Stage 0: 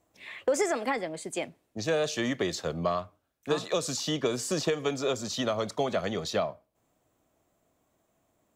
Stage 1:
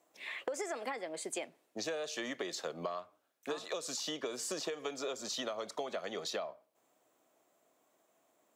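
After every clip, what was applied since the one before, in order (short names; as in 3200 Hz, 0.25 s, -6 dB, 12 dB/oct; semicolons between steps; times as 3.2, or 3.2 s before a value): HPF 350 Hz 12 dB/oct; compressor 6:1, threshold -37 dBFS, peak gain reduction 14 dB; gain +1 dB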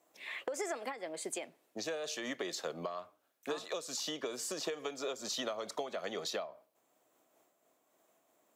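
bell 13000 Hz +4.5 dB 0.37 oct; noise-modulated level, depth 65%; gain +3 dB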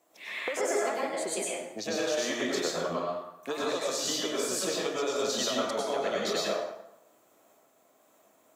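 plate-style reverb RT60 0.87 s, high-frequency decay 0.7×, pre-delay 85 ms, DRR -5 dB; gain +3 dB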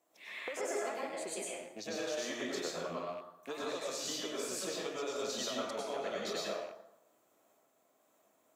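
rattling part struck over -51 dBFS, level -37 dBFS; gain -8 dB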